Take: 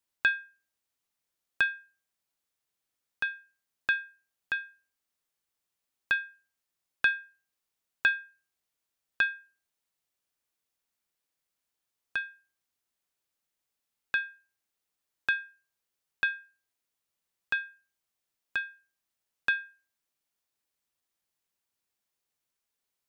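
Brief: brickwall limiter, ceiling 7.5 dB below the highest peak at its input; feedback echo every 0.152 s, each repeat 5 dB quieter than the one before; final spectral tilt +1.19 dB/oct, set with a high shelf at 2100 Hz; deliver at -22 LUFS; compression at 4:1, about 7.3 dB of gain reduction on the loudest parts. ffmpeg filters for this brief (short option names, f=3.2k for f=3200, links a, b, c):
-af "highshelf=f=2.1k:g=-8,acompressor=threshold=-33dB:ratio=4,alimiter=limit=-23.5dB:level=0:latency=1,aecho=1:1:152|304|456|608|760|912|1064:0.562|0.315|0.176|0.0988|0.0553|0.031|0.0173,volume=21.5dB"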